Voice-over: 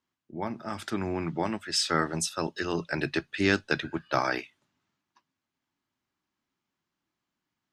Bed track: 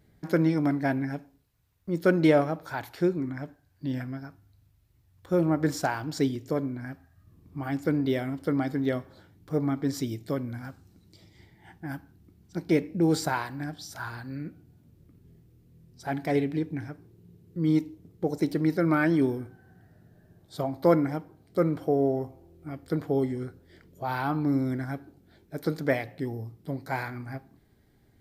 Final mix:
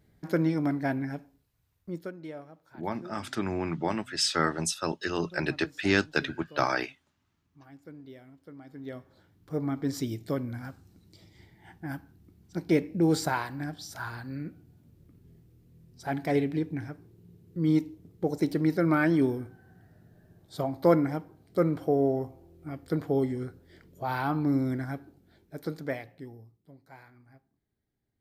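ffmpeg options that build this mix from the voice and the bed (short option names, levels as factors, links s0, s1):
-filter_complex "[0:a]adelay=2450,volume=1[s0];[1:a]volume=7.94,afade=t=out:st=1.77:d=0.34:silence=0.11885,afade=t=in:st=8.63:d=1.5:silence=0.0944061,afade=t=out:st=24.7:d=1.94:silence=0.105925[s1];[s0][s1]amix=inputs=2:normalize=0"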